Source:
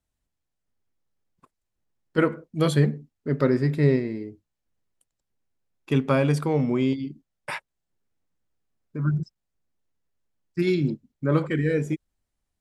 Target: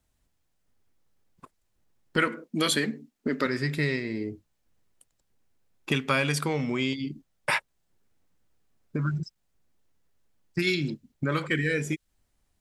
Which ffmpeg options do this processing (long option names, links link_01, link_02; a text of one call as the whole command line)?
ffmpeg -i in.wav -filter_complex "[0:a]asettb=1/sr,asplit=3[link_01][link_02][link_03];[link_01]atrim=end=2.274[link_04];[link_02]atrim=start=2.27:end=3.46,asetpts=PTS-STARTPTS,afade=type=in:duration=0.004:curve=qsin,afade=type=out:start_time=1.186:duration=0.004:curve=qsin,lowshelf=frequency=160:width_type=q:width=3:gain=-12[link_05];[link_03]atrim=start=3.456[link_06];[link_04][link_05]acrossfade=duration=0.004:curve1=hsin:curve2=qsin[link_07];[link_07][link_06]acrossfade=duration=0.004:curve1=qsin:curve2=hsin,acrossover=split=1500[link_08][link_09];[link_08]acompressor=threshold=-35dB:ratio=6[link_10];[link_10][link_09]amix=inputs=2:normalize=0,volume=8dB" out.wav